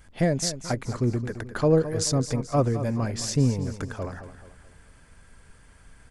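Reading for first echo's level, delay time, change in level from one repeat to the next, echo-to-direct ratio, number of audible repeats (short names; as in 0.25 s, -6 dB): -12.0 dB, 0.216 s, -7.5 dB, -11.0 dB, 4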